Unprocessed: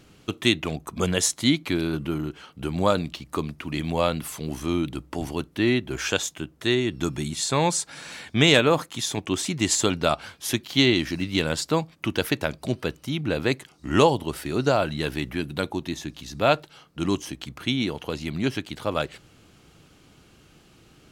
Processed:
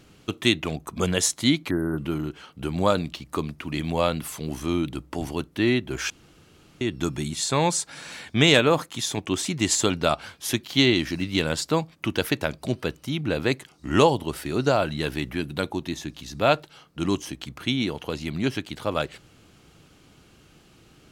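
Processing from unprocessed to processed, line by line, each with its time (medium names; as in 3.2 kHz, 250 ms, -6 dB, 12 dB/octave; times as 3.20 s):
1.70–1.98 s: spectral selection erased 2–8.5 kHz
6.10–6.81 s: room tone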